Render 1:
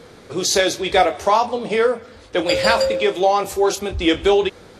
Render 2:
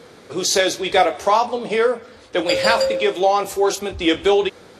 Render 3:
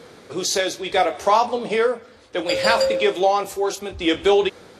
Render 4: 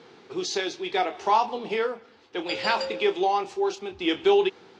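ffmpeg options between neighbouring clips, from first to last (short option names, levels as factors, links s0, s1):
-af "highpass=f=150:p=1"
-af "tremolo=f=0.67:d=0.44"
-af "highpass=130,equalizer=f=380:t=q:w=4:g=6,equalizer=f=570:t=q:w=4:g=-9,equalizer=f=850:t=q:w=4:g=6,equalizer=f=2800:t=q:w=4:g=5,lowpass=f=6000:w=0.5412,lowpass=f=6000:w=1.3066,volume=0.447"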